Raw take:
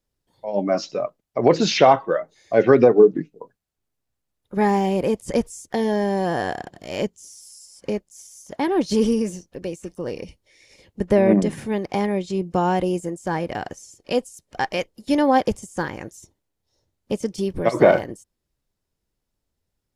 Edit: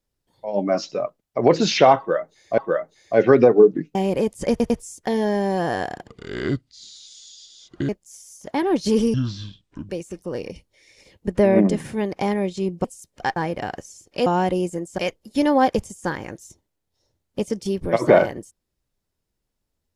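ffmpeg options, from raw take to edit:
-filter_complex "[0:a]asplit=13[a][b][c][d][e][f][g][h][i][j][k][l][m];[a]atrim=end=2.582[n];[b]atrim=start=1.978:end=3.352[o];[c]atrim=start=4.818:end=5.472[p];[d]atrim=start=5.368:end=5.472[q];[e]atrim=start=5.368:end=6.744[r];[f]atrim=start=6.74:end=7.94,asetpts=PTS-STARTPTS,asetrate=29106,aresample=44100[s];[g]atrim=start=7.936:end=9.194[t];[h]atrim=start=9.19:end=9.62,asetpts=PTS-STARTPTS,asetrate=25137,aresample=44100,atrim=end_sample=33268,asetpts=PTS-STARTPTS[u];[i]atrim=start=9.616:end=12.572[v];[j]atrim=start=14.188:end=14.712[w];[k]atrim=start=13.288:end=14.192[x];[l]atrim=start=12.568:end=13.292[y];[m]atrim=start=14.708[z];[n][o]acrossfade=d=0.004:c1=hsin:c2=hsin[aa];[aa][p]acrossfade=d=0.004:c1=hsin:c2=hsin[ab];[ab][q]acrossfade=d=0.004:c1=hsin:c2=hsin[ac];[ac][r]acrossfade=d=0.004:c1=hsin:c2=hsin[ad];[ad][s]acrossfade=d=0.004:c1=hsin:c2=hsin[ae];[ae][t]acrossfade=d=0.004:c1=hsin:c2=hsin[af];[af][u]acrossfade=d=0.004:c1=hsin:c2=hsin[ag];[ag][v]acrossfade=d=0.004:c1=hsin:c2=hsin[ah];[ah][w]acrossfade=d=0.004:c1=hsin:c2=hsin[ai];[ai][x]acrossfade=d=0.004:c1=hsin:c2=hsin[aj];[aj][y]acrossfade=d=0.004:c1=hsin:c2=hsin[ak];[ak][z]acrossfade=d=0.004:c1=hsin:c2=hsin"

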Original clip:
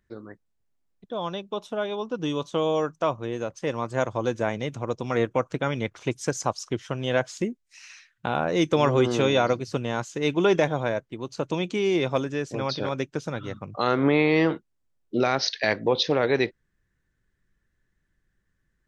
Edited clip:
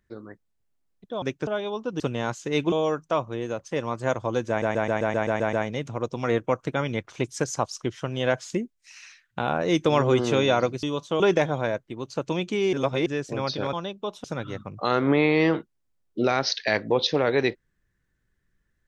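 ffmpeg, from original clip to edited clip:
-filter_complex "[0:a]asplit=19[a][b][c][d][e][f][g][h][i][j][k][l][m][n][o][p][q][r][s];[a]atrim=end=1.222[t];[b]atrim=start=12.948:end=13.202[u];[c]atrim=start=1.728:end=2.262[v];[d]atrim=start=9.698:end=10.422[w];[e]atrim=start=2.628:end=4.532[x];[f]atrim=start=4.398:end=4.532[y];[g]atrim=start=4.398:end=4.532[z];[h]atrim=start=4.398:end=4.532[aa];[i]atrim=start=4.398:end=4.532[ab];[j]atrim=start=4.398:end=4.532[ac];[k]atrim=start=4.398:end=4.532[ad];[l]atrim=start=4.398:end=4.532[ae];[m]atrim=start=4.398:end=9.702[af];[n]atrim=start=2.258:end=2.632[ag];[o]atrim=start=10.418:end=11.952[ah];[p]atrim=start=11.948:end=12.282,asetpts=PTS-STARTPTS,areverse[ai];[q]atrim=start=12.278:end=12.952[aj];[r]atrim=start=1.218:end=1.732[ak];[s]atrim=start=13.198[al];[t][u]acrossfade=d=0.004:c1=hsin:c2=hsin[am];[am][v]acrossfade=d=0.004:c1=hsin:c2=hsin[an];[an][w]acrossfade=d=0.004:c1=hsin:c2=hsin[ao];[ao][x]acrossfade=d=0.004:c1=hsin:c2=hsin[ap];[ap][y]acrossfade=d=0.004:c1=hsin:c2=hsin[aq];[aq][z]acrossfade=d=0.004:c1=hsin:c2=hsin[ar];[ar][aa]acrossfade=d=0.004:c1=hsin:c2=hsin[as];[as][ab]acrossfade=d=0.004:c1=hsin:c2=hsin[at];[at][ac]acrossfade=d=0.004:c1=hsin:c2=hsin[au];[au][ad]acrossfade=d=0.004:c1=hsin:c2=hsin[av];[av][ae]acrossfade=d=0.004:c1=hsin:c2=hsin[aw];[aw][af]acrossfade=d=0.004:c1=hsin:c2=hsin[ax];[ax][ag]acrossfade=d=0.004:c1=hsin:c2=hsin[ay];[ay][ah]acrossfade=d=0.004:c1=hsin:c2=hsin[az];[az][ai]acrossfade=d=0.004:c1=hsin:c2=hsin[ba];[ba][aj]acrossfade=d=0.004:c1=hsin:c2=hsin[bb];[bb][ak]acrossfade=d=0.004:c1=hsin:c2=hsin[bc];[bc][al]acrossfade=d=0.004:c1=hsin:c2=hsin"

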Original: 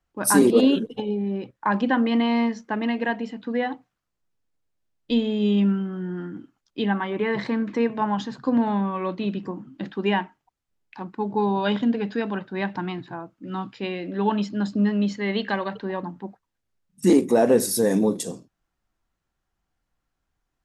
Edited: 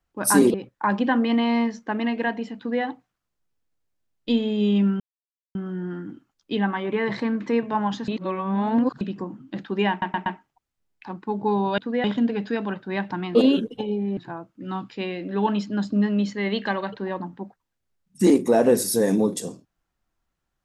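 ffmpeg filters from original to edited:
-filter_complex "[0:a]asplit=12[a][b][c][d][e][f][g][h][i][j][k][l];[a]atrim=end=0.542[m];[b]atrim=start=1.358:end=5.82,asetpts=PTS-STARTPTS,afade=t=out:st=4.458:d=0.004:c=hsin,apad=pad_dur=0.55[n];[c]atrim=start=5.82:end=8.352,asetpts=PTS-STARTPTS,afade=t=in:d=0.004:c=hsin[o];[d]atrim=start=8.348:end=9.282,asetpts=PTS-STARTPTS,areverse[p];[e]atrim=start=9.278:end=10.292[q];[f]atrim=start=10.168:end=10.292[r];[g]atrim=start=10.168:end=10.292[s];[h]atrim=start=10.168:end=11.692[t];[i]atrim=start=3.388:end=3.652[u];[j]atrim=start=11.688:end=13.002[v];[k]atrim=start=0.538:end=1.362[w];[l]atrim=start=12.998[x];[n][o]concat=n=2:v=0:a=1[y];[m][y]acrossfade=d=0.004:c1=hsin:c2=hsin[z];[z][p]acrossfade=d=0.004:c1=hsin:c2=hsin[aa];[aa][q]acrossfade=d=0.004:c1=hsin:c2=hsin[ab];[ab][r]acrossfade=d=0.004:c1=hsin:c2=hsin[ac];[ac][s]acrossfade=d=0.004:c1=hsin:c2=hsin[ad];[ad][t]acrossfade=d=0.004:c1=hsin:c2=hsin[ae];[ae][u]acrossfade=d=0.004:c1=hsin:c2=hsin[af];[af][v]acrossfade=d=0.004:c1=hsin:c2=hsin[ag];[ag][w]acrossfade=d=0.004:c1=hsin:c2=hsin[ah];[ah][x]acrossfade=d=0.004:c1=hsin:c2=hsin"

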